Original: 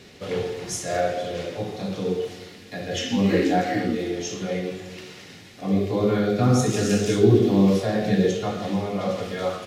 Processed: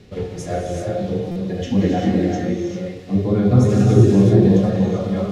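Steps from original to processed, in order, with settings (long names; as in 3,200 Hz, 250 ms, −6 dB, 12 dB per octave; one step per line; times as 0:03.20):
high-shelf EQ 3,600 Hz +9 dB
phase-vocoder stretch with locked phases 0.55×
spectral tilt −3.5 dB per octave
reverb whose tail is shaped and stops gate 420 ms rising, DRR 0.5 dB
buffer that repeats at 0:01.31, samples 256, times 7
level −3 dB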